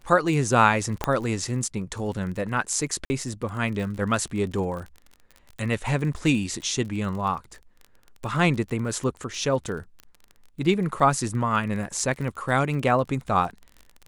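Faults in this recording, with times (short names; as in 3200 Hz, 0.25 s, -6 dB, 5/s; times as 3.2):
crackle 30/s -33 dBFS
1.04 pop -9 dBFS
3.05–3.1 gap 50 ms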